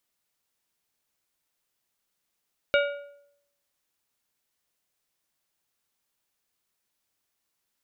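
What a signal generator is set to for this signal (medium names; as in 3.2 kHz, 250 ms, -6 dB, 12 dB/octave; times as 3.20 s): metal hit plate, lowest mode 571 Hz, decay 0.74 s, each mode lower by 3.5 dB, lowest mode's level -18 dB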